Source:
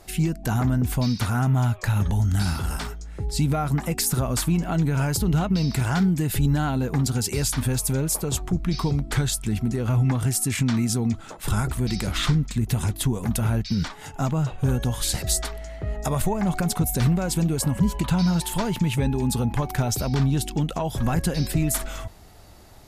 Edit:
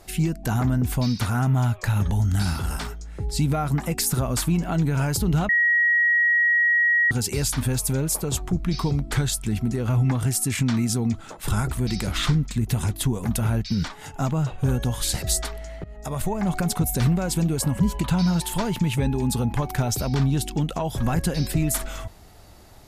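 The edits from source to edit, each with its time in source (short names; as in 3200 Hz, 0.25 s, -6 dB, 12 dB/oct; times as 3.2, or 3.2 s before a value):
5.49–7.11 bleep 1900 Hz -16 dBFS
15.84–16.67 fade in equal-power, from -17.5 dB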